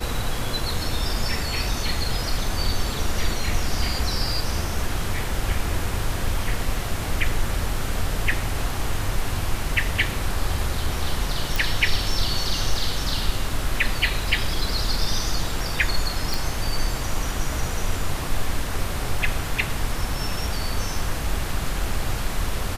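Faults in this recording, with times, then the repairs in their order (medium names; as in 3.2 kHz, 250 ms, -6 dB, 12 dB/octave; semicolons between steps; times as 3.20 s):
11.56 s: pop
16.34 s: pop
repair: de-click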